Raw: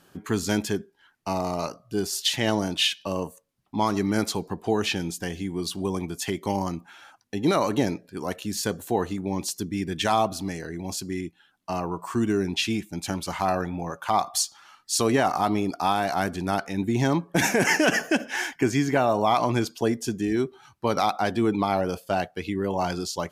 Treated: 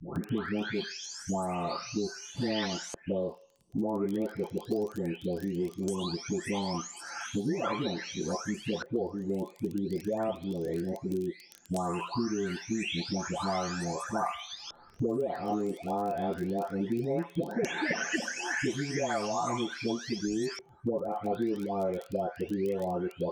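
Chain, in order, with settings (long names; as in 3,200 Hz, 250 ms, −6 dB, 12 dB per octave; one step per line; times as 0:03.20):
every frequency bin delayed by itself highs late, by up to 780 ms
delay with a high-pass on its return 89 ms, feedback 42%, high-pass 1,600 Hz, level −16.5 dB
auto-filter low-pass square 0.17 Hz 510–6,100 Hz
surface crackle 23 per second −50 dBFS
multiband upward and downward compressor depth 100%
level −6.5 dB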